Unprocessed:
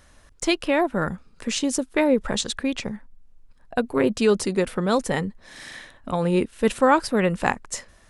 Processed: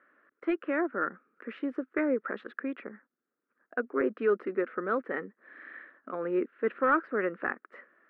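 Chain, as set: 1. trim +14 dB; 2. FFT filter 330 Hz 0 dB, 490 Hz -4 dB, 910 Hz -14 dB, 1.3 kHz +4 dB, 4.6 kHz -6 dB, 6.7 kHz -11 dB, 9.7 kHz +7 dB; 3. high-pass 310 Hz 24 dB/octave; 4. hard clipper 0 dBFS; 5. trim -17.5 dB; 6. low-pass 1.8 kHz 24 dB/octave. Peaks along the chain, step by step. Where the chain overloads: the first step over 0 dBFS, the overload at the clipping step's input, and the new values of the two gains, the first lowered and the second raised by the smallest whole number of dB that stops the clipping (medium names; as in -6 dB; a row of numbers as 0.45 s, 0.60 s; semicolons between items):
+10.0 dBFS, +7.5 dBFS, +9.0 dBFS, 0.0 dBFS, -17.5 dBFS, -16.0 dBFS; step 1, 9.0 dB; step 1 +5 dB, step 5 -8.5 dB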